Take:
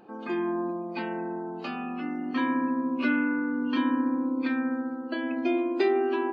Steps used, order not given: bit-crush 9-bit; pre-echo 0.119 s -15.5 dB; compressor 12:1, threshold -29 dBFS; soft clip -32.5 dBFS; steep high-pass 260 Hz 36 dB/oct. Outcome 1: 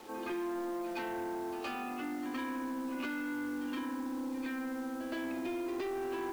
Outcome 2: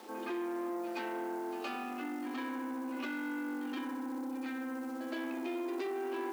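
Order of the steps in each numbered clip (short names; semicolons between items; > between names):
pre-echo > compressor > steep high-pass > soft clip > bit-crush; pre-echo > compressor > bit-crush > soft clip > steep high-pass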